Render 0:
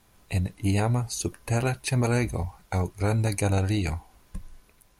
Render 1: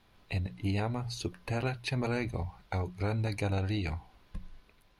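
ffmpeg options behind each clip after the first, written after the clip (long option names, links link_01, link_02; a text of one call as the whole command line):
ffmpeg -i in.wav -af "highshelf=frequency=5500:width_type=q:width=1.5:gain=-11,bandreject=frequency=60:width_type=h:width=6,bandreject=frequency=120:width_type=h:width=6,bandreject=frequency=180:width_type=h:width=6,acompressor=threshold=-31dB:ratio=1.5,volume=-3dB" out.wav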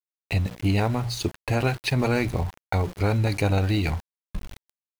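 ffmpeg -i in.wav -af "aeval=exprs='val(0)*gte(abs(val(0)),0.00596)':channel_layout=same,volume=9dB" out.wav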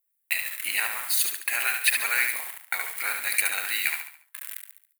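ffmpeg -i in.wav -filter_complex "[0:a]aexciter=amount=5:drive=9.1:freq=8200,highpass=frequency=1800:width_type=q:width=2.8,asplit=2[link_01][link_02];[link_02]aecho=0:1:71|142|213|284|355:0.531|0.212|0.0849|0.034|0.0136[link_03];[link_01][link_03]amix=inputs=2:normalize=0" out.wav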